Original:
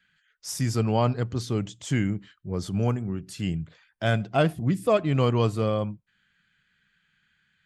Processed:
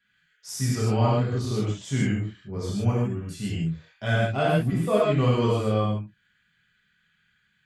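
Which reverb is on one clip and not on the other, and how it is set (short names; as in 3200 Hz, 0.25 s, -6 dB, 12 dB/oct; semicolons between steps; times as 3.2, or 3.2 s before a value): non-linear reverb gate 0.18 s flat, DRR -7 dB; gain -7 dB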